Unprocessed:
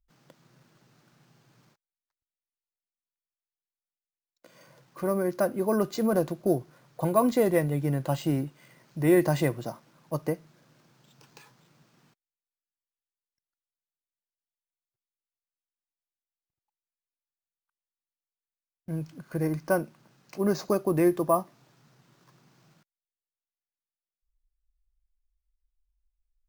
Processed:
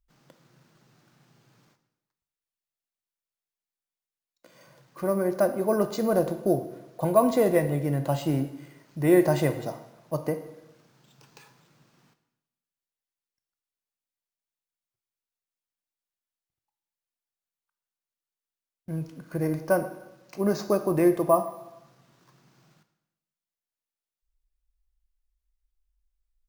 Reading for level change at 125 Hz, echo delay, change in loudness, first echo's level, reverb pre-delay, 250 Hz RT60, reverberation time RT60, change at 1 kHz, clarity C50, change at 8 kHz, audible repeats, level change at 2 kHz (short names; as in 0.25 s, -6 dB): +0.5 dB, none, +1.5 dB, none, 7 ms, 0.95 s, 0.95 s, +2.0 dB, 11.0 dB, +0.5 dB, none, +0.5 dB